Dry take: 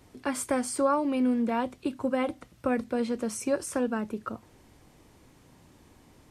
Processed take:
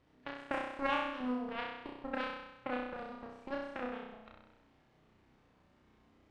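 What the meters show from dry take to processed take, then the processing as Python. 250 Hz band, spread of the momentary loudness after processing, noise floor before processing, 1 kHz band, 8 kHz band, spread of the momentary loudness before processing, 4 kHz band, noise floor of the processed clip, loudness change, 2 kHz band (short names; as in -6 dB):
-13.5 dB, 13 LU, -59 dBFS, -6.5 dB, under -30 dB, 9 LU, -3.0 dB, -69 dBFS, -10.0 dB, -2.0 dB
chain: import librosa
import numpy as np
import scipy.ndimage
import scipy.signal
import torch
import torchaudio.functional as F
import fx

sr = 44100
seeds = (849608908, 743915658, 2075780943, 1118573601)

y = x + 0.5 * 10.0 ** (-36.5 / 20.0) * np.sign(x)
y = fx.cheby_harmonics(y, sr, harmonics=(3, 6), levels_db=(-9, -33), full_scale_db=-13.5)
y = fx.env_lowpass(y, sr, base_hz=2800.0, full_db=-20.0)
y = fx.room_flutter(y, sr, wall_m=5.5, rt60_s=0.94)
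y = y * librosa.db_to_amplitude(-5.0)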